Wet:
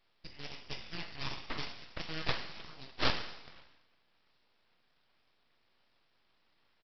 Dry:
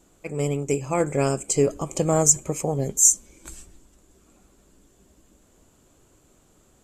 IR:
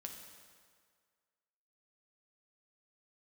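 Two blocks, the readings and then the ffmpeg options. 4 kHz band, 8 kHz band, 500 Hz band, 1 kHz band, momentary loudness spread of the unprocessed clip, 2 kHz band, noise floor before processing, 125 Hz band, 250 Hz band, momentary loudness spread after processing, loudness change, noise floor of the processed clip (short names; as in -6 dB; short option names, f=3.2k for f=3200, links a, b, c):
+2.0 dB, under -40 dB, -23.0 dB, -12.0 dB, 10 LU, -1.5 dB, -60 dBFS, -19.5 dB, -20.0 dB, 16 LU, -18.0 dB, -73 dBFS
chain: -filter_complex "[0:a]aeval=exprs='0.841*(cos(1*acos(clip(val(0)/0.841,-1,1)))-cos(1*PI/2))+0.119*(cos(4*acos(clip(val(0)/0.841,-1,1)))-cos(4*PI/2))+0.0668*(cos(7*acos(clip(val(0)/0.841,-1,1)))-cos(7*PI/2))':c=same,aemphasis=mode=production:type=bsi,aexciter=amount=9:drive=6.9:freq=2.1k[a];[1:a]atrim=start_sample=2205,asetrate=83790,aresample=44100[b];[a][b]afir=irnorm=-1:irlink=0,aresample=11025,aeval=exprs='abs(val(0))':c=same,aresample=44100,volume=-6.5dB"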